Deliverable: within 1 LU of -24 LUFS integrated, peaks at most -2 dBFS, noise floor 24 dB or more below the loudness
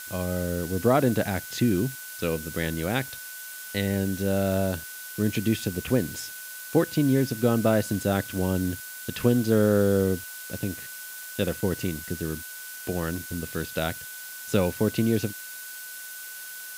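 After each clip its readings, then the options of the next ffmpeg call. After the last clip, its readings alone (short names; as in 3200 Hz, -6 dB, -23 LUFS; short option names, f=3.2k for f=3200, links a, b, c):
steady tone 1500 Hz; tone level -42 dBFS; noise floor -40 dBFS; noise floor target -51 dBFS; loudness -27.0 LUFS; peak -7.5 dBFS; loudness target -24.0 LUFS
-> -af "bandreject=f=1.5k:w=30"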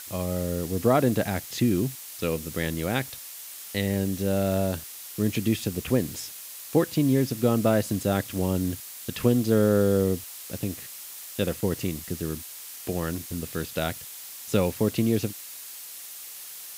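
steady tone none; noise floor -41 dBFS; noise floor target -51 dBFS
-> -af "afftdn=nr=10:nf=-41"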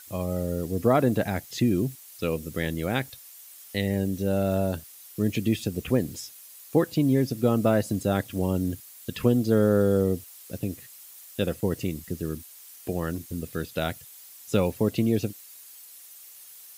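noise floor -48 dBFS; noise floor target -51 dBFS
-> -af "afftdn=nr=6:nf=-48"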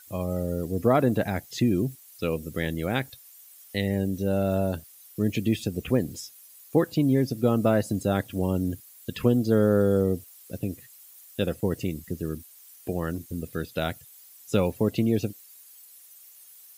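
noise floor -51 dBFS; loudness -27.0 LUFS; peak -8.0 dBFS; loudness target -24.0 LUFS
-> -af "volume=3dB"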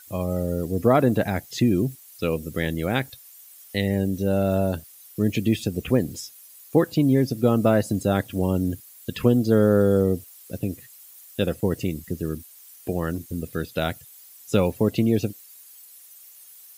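loudness -24.0 LUFS; peak -5.0 dBFS; noise floor -48 dBFS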